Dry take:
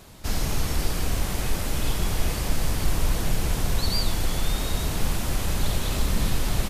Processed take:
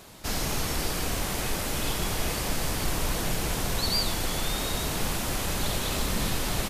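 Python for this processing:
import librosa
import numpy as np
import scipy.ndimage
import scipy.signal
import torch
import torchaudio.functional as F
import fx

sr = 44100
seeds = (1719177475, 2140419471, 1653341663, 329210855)

y = fx.low_shelf(x, sr, hz=140.0, db=-10.0)
y = y * librosa.db_to_amplitude(1.5)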